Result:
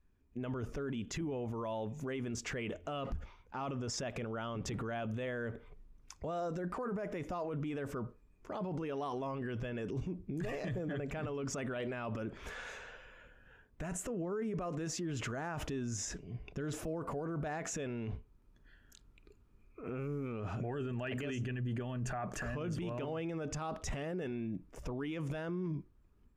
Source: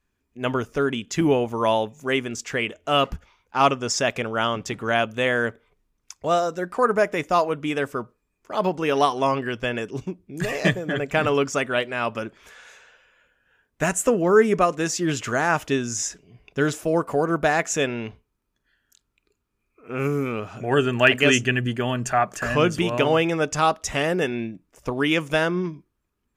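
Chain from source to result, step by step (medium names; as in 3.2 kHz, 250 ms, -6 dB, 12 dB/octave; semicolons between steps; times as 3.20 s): tilt EQ -2.5 dB/octave; level rider gain up to 9 dB; peak limiter -26 dBFS, peak gain reduction 25 dB; trim -5 dB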